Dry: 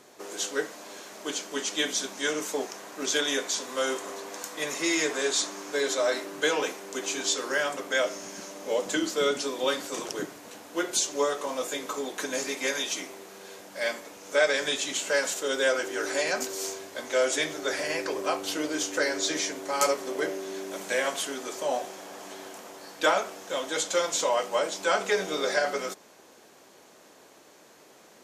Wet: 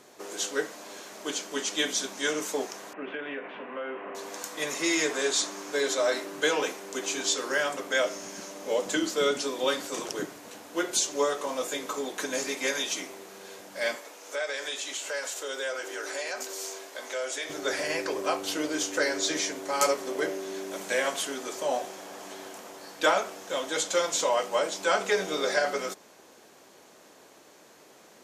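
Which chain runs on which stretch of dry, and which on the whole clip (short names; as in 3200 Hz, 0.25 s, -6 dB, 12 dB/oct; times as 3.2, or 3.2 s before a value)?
2.93–4.15 Chebyshev band-pass 140–2800 Hz, order 5 + compressor 4:1, threshold -32 dBFS
13.95–17.5 HPF 420 Hz + compressor 2:1, threshold -34 dBFS
whole clip: dry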